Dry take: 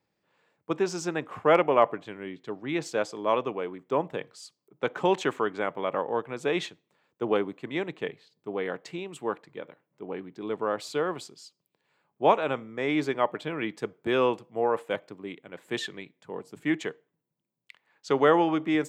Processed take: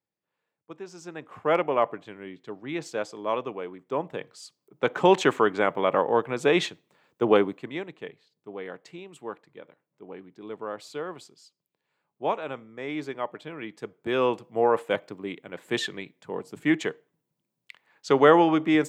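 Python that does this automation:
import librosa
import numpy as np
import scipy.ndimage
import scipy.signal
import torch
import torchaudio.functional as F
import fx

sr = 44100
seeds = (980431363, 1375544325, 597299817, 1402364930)

y = fx.gain(x, sr, db=fx.line((0.86, -13.5), (1.52, -2.5), (3.91, -2.5), (5.17, 6.0), (7.43, 6.0), (7.89, -6.0), (13.69, -6.0), (14.57, 4.0)))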